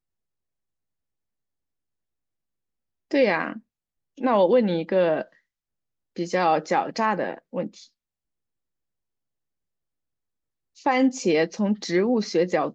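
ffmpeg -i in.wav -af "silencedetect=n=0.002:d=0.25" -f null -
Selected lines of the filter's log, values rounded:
silence_start: 0.00
silence_end: 3.11 | silence_duration: 3.11
silence_start: 3.60
silence_end: 4.17 | silence_duration: 0.57
silence_start: 5.38
silence_end: 6.16 | silence_duration: 0.78
silence_start: 7.88
silence_end: 10.76 | silence_duration: 2.88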